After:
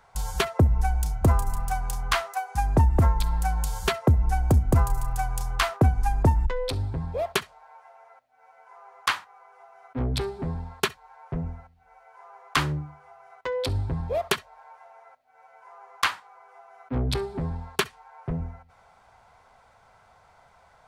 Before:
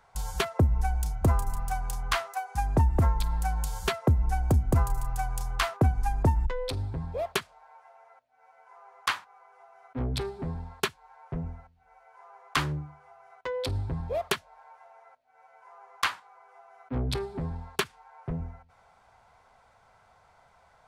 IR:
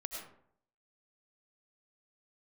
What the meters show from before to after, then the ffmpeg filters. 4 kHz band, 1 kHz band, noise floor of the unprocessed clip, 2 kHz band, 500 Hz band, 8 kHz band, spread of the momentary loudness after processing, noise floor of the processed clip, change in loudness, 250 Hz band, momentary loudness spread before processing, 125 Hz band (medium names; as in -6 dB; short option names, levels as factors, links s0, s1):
+3.5 dB, +3.5 dB, -62 dBFS, +3.5 dB, +3.5 dB, +3.5 dB, 11 LU, -58 dBFS, +3.5 dB, +3.5 dB, 11 LU, +3.5 dB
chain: -filter_complex "[1:a]atrim=start_sample=2205,atrim=end_sample=3087[s0];[0:a][s0]afir=irnorm=-1:irlink=0,volume=2.24"